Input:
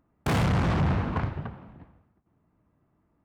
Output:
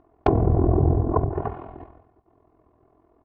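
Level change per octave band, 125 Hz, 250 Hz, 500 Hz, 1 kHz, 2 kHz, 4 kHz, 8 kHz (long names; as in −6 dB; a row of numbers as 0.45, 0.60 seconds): +4.0 dB, +4.0 dB, +10.0 dB, +4.0 dB, −10.5 dB, below −10 dB, can't be measured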